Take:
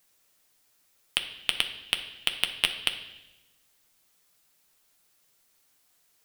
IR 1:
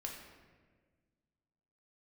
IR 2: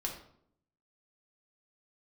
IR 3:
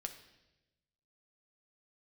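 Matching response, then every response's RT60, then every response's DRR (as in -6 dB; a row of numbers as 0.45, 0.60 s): 3; 1.5, 0.65, 1.0 s; -0.5, -0.5, 5.5 dB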